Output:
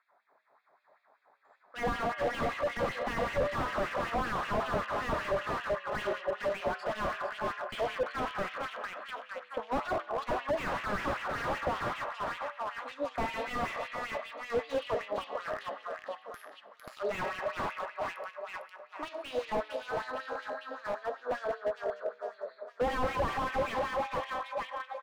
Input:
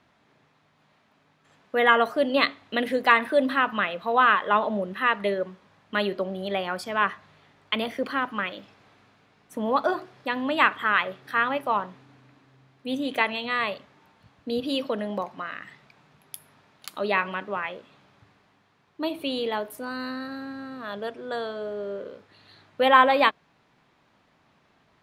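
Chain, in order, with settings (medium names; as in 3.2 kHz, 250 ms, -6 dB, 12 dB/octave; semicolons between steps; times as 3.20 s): local Wiener filter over 15 samples; on a send: feedback delay 454 ms, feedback 52%, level -8 dB; on the sum: low-pass that closes with the level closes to 3 kHz, closed at -17 dBFS; algorithmic reverb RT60 3 s, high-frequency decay 0.3×, pre-delay 15 ms, DRR 11 dB; LFO high-pass sine 5.2 Hz 550–2800 Hz; flange 0.22 Hz, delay 6.7 ms, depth 2.2 ms, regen -86%; level rider gain up to 3 dB; slew-rate limiter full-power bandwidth 28 Hz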